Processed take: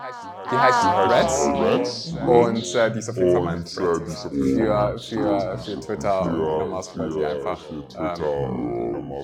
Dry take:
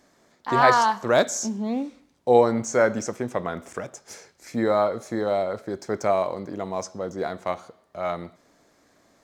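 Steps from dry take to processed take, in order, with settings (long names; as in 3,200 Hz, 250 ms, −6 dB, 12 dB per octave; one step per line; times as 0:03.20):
noise reduction from a noise print of the clip's start 20 dB
delay with pitch and tempo change per echo 134 ms, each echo −5 semitones, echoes 2
backwards echo 597 ms −17.5 dB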